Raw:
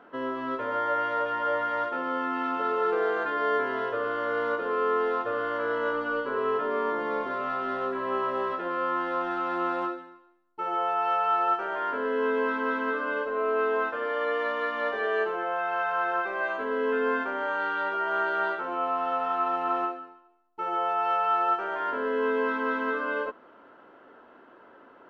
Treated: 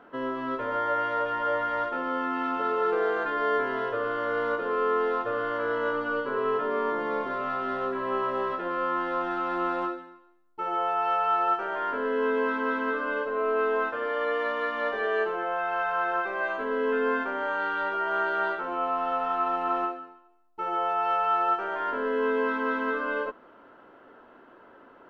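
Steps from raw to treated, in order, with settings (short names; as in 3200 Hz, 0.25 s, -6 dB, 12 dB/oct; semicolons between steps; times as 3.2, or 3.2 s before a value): low shelf 88 Hz +9.5 dB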